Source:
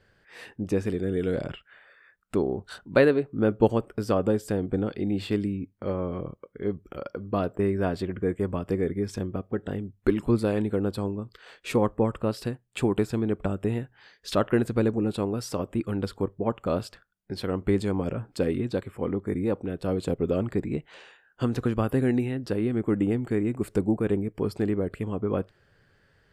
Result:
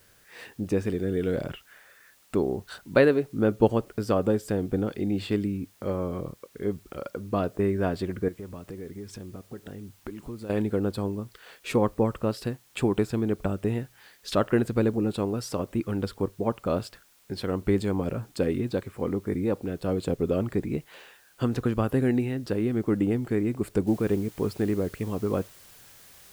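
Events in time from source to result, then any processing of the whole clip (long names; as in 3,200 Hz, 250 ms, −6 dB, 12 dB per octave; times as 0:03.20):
0:08.28–0:10.50: downward compressor 3 to 1, threshold −39 dBFS
0:23.87: noise floor change −61 dB −52 dB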